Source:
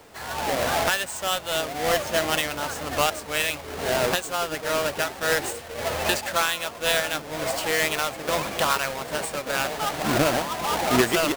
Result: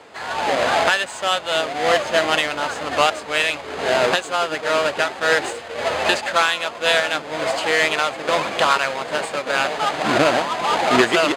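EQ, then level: high-pass 370 Hz 6 dB/octave; distance through air 89 m; band-stop 5.6 kHz, Q 8.1; +7.5 dB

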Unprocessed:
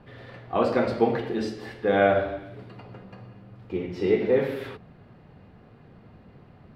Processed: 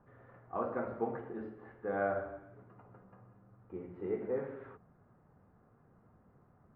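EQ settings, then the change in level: four-pole ladder low-pass 1.6 kHz, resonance 40%; -6.5 dB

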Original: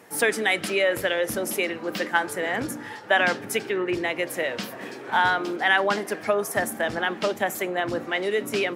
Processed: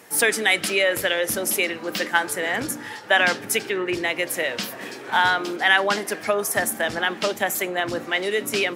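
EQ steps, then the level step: treble shelf 2.2 kHz +8 dB; 0.0 dB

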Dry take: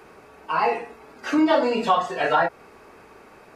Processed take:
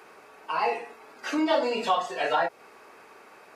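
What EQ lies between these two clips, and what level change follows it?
high-pass 610 Hz 6 dB/octave; dynamic bell 1.4 kHz, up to -6 dB, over -35 dBFS, Q 1.1; 0.0 dB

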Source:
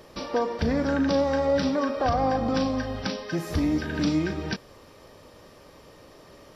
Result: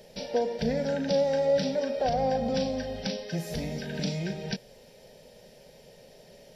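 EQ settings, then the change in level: static phaser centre 310 Hz, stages 6; 0.0 dB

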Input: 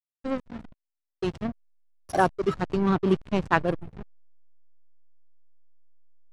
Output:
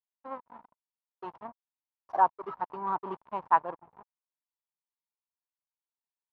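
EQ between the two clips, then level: band-pass filter 950 Hz, Q 5.9; distance through air 71 m; +6.0 dB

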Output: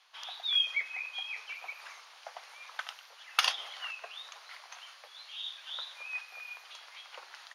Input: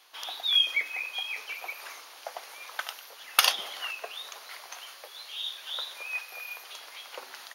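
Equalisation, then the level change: high-pass 750 Hz 12 dB/octave; distance through air 67 m; -3.5 dB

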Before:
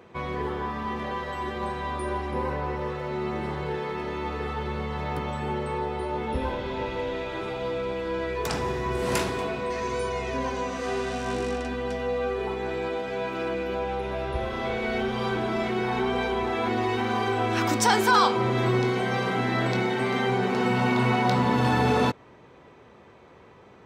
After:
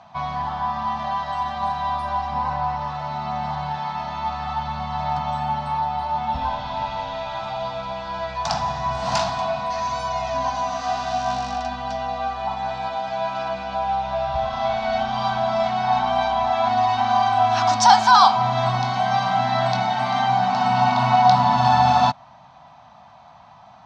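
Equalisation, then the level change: FFT filter 100 Hz 0 dB, 150 Hz +4 dB, 250 Hz -3 dB, 430 Hz -29 dB, 690 Hz +15 dB, 2.1 kHz -2 dB, 4.4 kHz +10 dB, 6.3 kHz +6 dB, 12 kHz -24 dB; -1.0 dB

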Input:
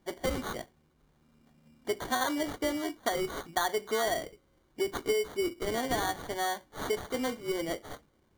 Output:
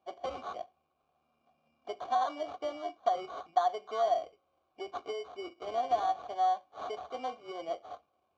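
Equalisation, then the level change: vowel filter a; resonant low-pass 5.7 kHz, resonance Q 1.9; peaking EQ 74 Hz +12.5 dB 0.75 oct; +6.5 dB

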